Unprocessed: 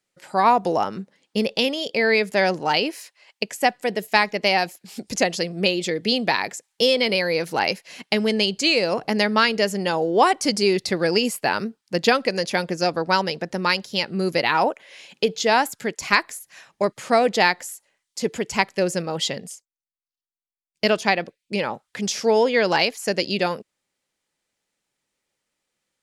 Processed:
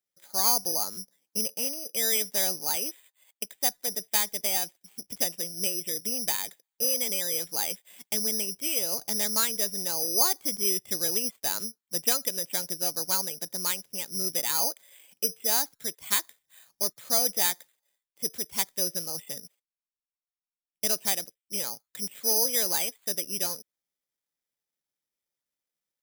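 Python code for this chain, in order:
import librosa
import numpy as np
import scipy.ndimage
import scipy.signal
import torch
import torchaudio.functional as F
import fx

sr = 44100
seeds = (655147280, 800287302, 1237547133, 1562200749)

y = (np.kron(scipy.signal.resample_poly(x, 1, 8), np.eye(8)[0]) * 8)[:len(x)]
y = y * librosa.db_to_amplitude(-16.0)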